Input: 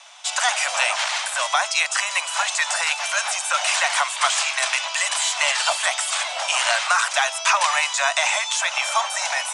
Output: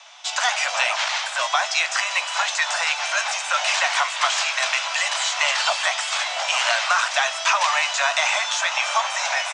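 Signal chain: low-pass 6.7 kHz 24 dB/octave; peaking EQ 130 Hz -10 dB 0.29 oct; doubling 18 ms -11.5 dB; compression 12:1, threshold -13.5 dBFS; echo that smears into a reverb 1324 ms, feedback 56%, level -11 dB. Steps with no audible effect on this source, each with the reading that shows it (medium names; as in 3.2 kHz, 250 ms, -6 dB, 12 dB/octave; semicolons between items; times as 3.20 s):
peaking EQ 130 Hz: input has nothing below 480 Hz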